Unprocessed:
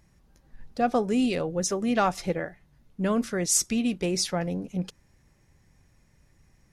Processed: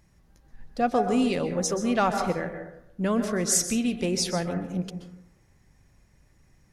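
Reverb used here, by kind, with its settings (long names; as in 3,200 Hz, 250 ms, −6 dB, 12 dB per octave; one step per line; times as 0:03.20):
dense smooth reverb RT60 0.81 s, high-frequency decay 0.3×, pre-delay 115 ms, DRR 6.5 dB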